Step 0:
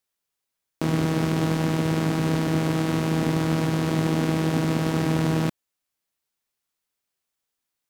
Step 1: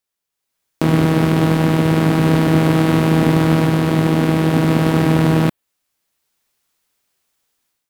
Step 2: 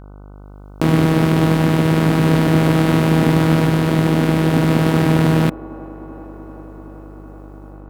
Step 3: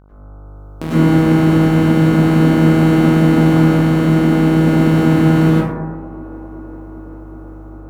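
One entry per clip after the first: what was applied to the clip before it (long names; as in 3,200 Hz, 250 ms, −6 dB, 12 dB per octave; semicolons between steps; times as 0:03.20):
dynamic equaliser 6,200 Hz, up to −7 dB, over −54 dBFS, Q 1.2; automatic gain control gain up to 12.5 dB
delay with a band-pass on its return 384 ms, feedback 80%, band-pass 560 Hz, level −17 dB; hum with harmonics 50 Hz, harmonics 30, −38 dBFS −6 dB per octave
dense smooth reverb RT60 1.2 s, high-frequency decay 0.3×, pre-delay 85 ms, DRR −8.5 dB; level −8.5 dB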